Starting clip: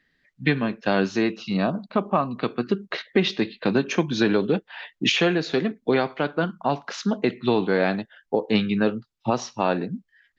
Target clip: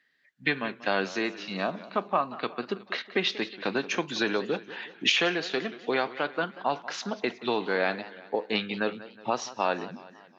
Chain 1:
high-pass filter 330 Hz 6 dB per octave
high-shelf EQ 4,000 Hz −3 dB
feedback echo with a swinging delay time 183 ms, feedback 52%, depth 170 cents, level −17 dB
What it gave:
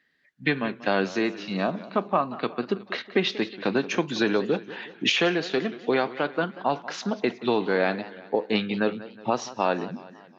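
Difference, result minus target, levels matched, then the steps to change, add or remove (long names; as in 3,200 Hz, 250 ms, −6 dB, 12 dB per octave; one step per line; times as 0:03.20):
250 Hz band +3.5 dB
change: high-pass filter 830 Hz 6 dB per octave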